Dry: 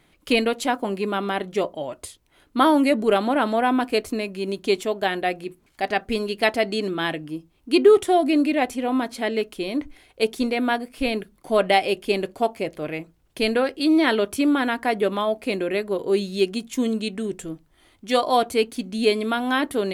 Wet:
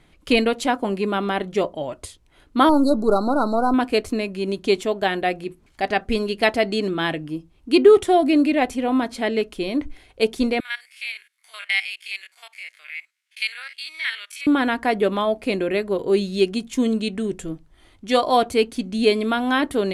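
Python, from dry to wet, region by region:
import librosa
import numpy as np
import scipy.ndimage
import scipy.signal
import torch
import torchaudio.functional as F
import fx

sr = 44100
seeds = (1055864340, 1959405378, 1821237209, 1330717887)

y = fx.chain(x, sr, fx.halfwave_gain(db=-3.0),
    fx.brickwall_bandstop(low_hz=1500.0, high_hz=3800.0), at=(2.69, 3.74))
y = fx.chain(y, sr, fx.spec_steps(hold_ms=50),
    fx.cheby1_highpass(hz=1800.0, order=3),
    fx.peak_eq(hz=2200.0, db=6.5, octaves=0.21), at=(10.6, 14.47))
y = scipy.signal.sosfilt(scipy.signal.bessel(4, 10000.0, 'lowpass', norm='mag', fs=sr, output='sos'), y)
y = fx.low_shelf(y, sr, hz=100.0, db=9.0)
y = y * 10.0 ** (1.5 / 20.0)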